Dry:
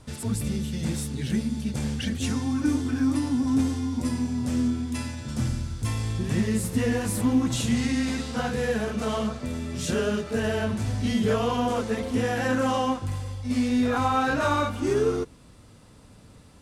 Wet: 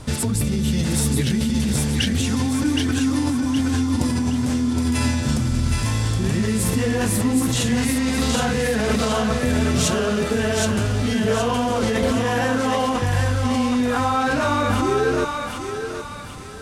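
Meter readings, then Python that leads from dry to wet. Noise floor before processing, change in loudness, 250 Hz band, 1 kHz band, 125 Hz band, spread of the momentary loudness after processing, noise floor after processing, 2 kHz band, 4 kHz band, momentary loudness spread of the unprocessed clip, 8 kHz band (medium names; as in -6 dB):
-51 dBFS, +5.5 dB, +5.0 dB, +5.5 dB, +7.0 dB, 2 LU, -30 dBFS, +7.0 dB, +9.0 dB, 6 LU, +10.0 dB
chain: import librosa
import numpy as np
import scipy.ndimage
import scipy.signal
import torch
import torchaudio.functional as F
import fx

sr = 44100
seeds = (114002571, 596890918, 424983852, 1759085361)

p1 = fx.over_compress(x, sr, threshold_db=-31.0, ratio=-0.5)
p2 = x + (p1 * 10.0 ** (2.5 / 20.0))
p3 = fx.echo_thinned(p2, sr, ms=769, feedback_pct=43, hz=670.0, wet_db=-3)
y = p3 * 10.0 ** (1.5 / 20.0)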